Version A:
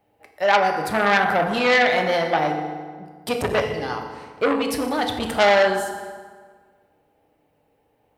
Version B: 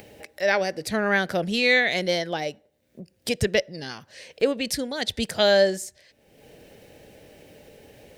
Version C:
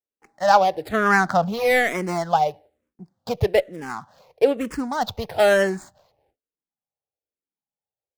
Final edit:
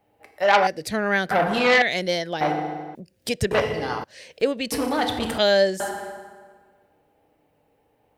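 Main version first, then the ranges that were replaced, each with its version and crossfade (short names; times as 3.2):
A
0.67–1.31 from B
1.82–2.41 from B
2.95–3.51 from B
4.04–4.72 from B
5.38–5.8 from B
not used: C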